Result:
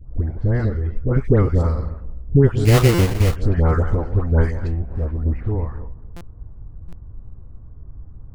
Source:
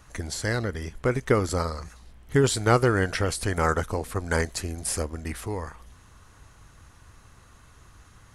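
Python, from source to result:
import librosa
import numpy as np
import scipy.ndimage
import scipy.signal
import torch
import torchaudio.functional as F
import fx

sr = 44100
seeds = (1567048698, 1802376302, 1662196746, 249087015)

p1 = fx.reverse_delay(x, sr, ms=139, wet_db=-12.0)
p2 = fx.high_shelf(p1, sr, hz=3500.0, db=-5.5)
p3 = fx.overload_stage(p2, sr, gain_db=28.5, at=(4.63, 5.2))
p4 = p3 + fx.echo_filtered(p3, sr, ms=255, feedback_pct=21, hz=3200.0, wet_db=-18.5, dry=0)
p5 = fx.env_lowpass(p4, sr, base_hz=620.0, full_db=-20.0)
p6 = fx.tilt_eq(p5, sr, slope=-4.0)
p7 = fx.dispersion(p6, sr, late='highs', ms=103.0, hz=1200.0)
p8 = fx.sample_hold(p7, sr, seeds[0], rate_hz=2500.0, jitter_pct=20, at=(2.65, 3.36))
p9 = fx.buffer_glitch(p8, sr, at_s=(2.94, 6.16, 6.88), block=256, repeats=7)
p10 = fx.ensemble(p9, sr, at=(0.69, 1.1), fade=0.02)
y = F.gain(torch.from_numpy(p10), -1.0).numpy()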